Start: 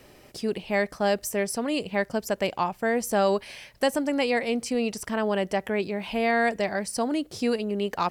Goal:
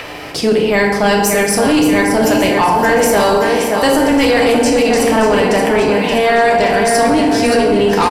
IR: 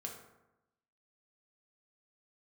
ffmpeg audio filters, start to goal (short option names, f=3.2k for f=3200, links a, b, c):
-filter_complex "[0:a]aecho=1:1:575|1150|1725|2300|2875|3450:0.355|0.192|0.103|0.0559|0.0302|0.0163[a];[1:a]atrim=start_sample=2205,asetrate=28665,aresample=44100[b];[a][b]afir=irnorm=-1:irlink=0,apsyclip=24.5dB,acrossover=split=610|4100[c][d][e];[d]acompressor=mode=upward:threshold=-11dB:ratio=2.5[f];[c][f][e]amix=inputs=3:normalize=0,volume=-7.5dB"